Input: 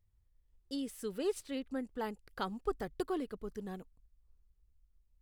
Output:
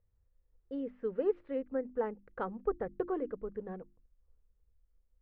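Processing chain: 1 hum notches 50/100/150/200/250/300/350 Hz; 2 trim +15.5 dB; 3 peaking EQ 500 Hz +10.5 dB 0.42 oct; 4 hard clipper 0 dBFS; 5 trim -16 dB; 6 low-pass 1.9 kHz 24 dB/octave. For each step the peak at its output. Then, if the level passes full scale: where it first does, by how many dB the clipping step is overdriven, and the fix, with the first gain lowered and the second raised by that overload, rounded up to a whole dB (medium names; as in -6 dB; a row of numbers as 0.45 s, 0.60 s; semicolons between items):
-21.5 dBFS, -6.0 dBFS, -3.5 dBFS, -3.5 dBFS, -19.5 dBFS, -20.0 dBFS; nothing clips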